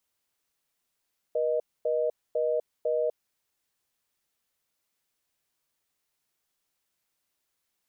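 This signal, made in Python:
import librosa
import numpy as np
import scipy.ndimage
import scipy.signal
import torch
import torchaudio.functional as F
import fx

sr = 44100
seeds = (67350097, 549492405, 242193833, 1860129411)

y = fx.call_progress(sr, length_s=1.94, kind='reorder tone', level_db=-26.5)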